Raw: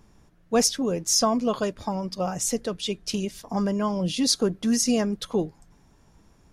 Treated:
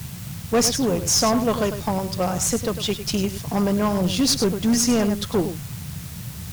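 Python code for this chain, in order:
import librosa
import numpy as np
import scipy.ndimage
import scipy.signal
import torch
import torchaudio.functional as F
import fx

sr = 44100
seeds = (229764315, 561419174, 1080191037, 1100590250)

p1 = x + fx.echo_single(x, sr, ms=102, db=-11.0, dry=0)
p2 = fx.dmg_noise_band(p1, sr, seeds[0], low_hz=68.0, high_hz=180.0, level_db=-38.0)
p3 = fx.quant_dither(p2, sr, seeds[1], bits=6, dither='triangular')
p4 = p2 + (p3 * 10.0 ** (-4.5 / 20.0))
p5 = fx.cheby_harmonics(p4, sr, harmonics=(8,), levels_db=(-25,), full_scale_db=-3.5)
y = np.clip(p5, -10.0 ** (-14.0 / 20.0), 10.0 ** (-14.0 / 20.0))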